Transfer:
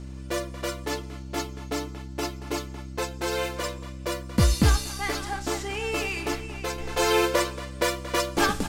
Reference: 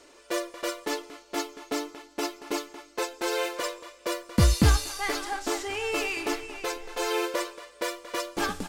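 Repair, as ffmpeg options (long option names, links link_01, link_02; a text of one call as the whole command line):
ffmpeg -i in.wav -af "bandreject=frequency=65.5:width_type=h:width=4,bandreject=frequency=131:width_type=h:width=4,bandreject=frequency=196.5:width_type=h:width=4,bandreject=frequency=262:width_type=h:width=4,bandreject=frequency=327.5:width_type=h:width=4,asetnsamples=nb_out_samples=441:pad=0,asendcmd='6.78 volume volume -6dB',volume=0dB" out.wav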